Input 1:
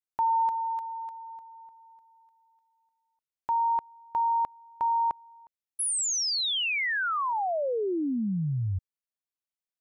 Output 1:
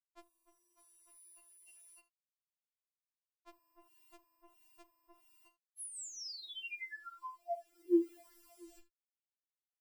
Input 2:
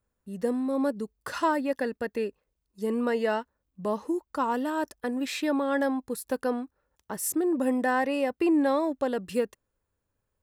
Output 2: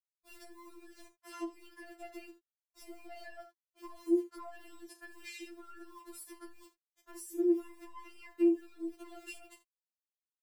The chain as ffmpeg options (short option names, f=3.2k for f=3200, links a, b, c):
-filter_complex "[0:a]acrusher=bits=8:mix=0:aa=0.000001,acompressor=threshold=-32dB:ratio=6:attack=0.13:release=32:knee=1:detection=peak,asplit=2[a][b];[b]aecho=0:1:12|42|77:0.501|0.251|0.15[c];[a][c]amix=inputs=2:normalize=0,acrossover=split=430[d][e];[e]acompressor=threshold=-41dB:ratio=6:attack=1.2:release=294:knee=2.83:detection=peak[f];[d][f]amix=inputs=2:normalize=0,afftfilt=real='re*4*eq(mod(b,16),0)':imag='im*4*eq(mod(b,16),0)':win_size=2048:overlap=0.75"